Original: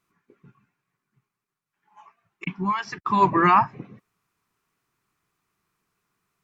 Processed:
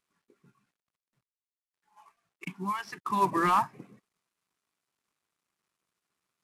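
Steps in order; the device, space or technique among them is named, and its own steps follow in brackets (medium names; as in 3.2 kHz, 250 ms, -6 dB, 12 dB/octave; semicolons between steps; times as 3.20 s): early wireless headset (high-pass 160 Hz 12 dB/octave; CVSD coder 64 kbps); trim -7 dB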